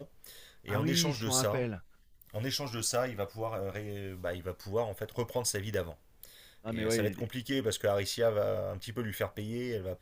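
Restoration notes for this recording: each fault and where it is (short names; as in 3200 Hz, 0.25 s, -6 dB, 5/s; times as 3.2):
5.74 pop -24 dBFS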